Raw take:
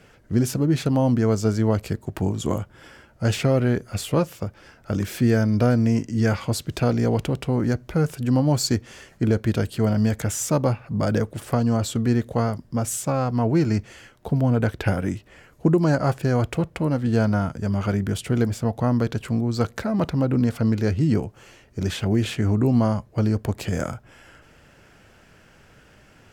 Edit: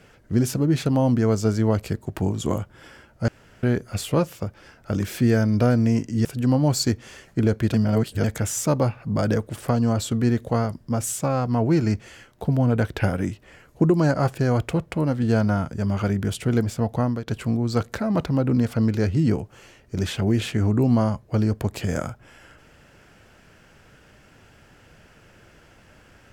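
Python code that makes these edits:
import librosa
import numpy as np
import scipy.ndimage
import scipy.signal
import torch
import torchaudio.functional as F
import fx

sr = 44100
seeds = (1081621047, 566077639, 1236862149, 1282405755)

y = fx.edit(x, sr, fx.room_tone_fill(start_s=3.28, length_s=0.35),
    fx.cut(start_s=6.25, length_s=1.84),
    fx.reverse_span(start_s=9.58, length_s=0.5),
    fx.fade_out_to(start_s=18.83, length_s=0.28, floor_db=-15.0), tone=tone)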